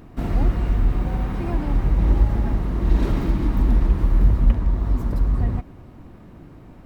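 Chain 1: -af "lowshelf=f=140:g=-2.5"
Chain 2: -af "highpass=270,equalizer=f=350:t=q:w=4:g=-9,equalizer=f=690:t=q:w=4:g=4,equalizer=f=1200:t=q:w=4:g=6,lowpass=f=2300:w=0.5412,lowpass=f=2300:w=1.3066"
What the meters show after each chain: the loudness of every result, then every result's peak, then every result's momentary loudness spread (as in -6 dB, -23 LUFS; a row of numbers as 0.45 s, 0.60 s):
-24.0 LUFS, -33.5 LUFS; -7.0 dBFS, -19.5 dBFS; 6 LU, 19 LU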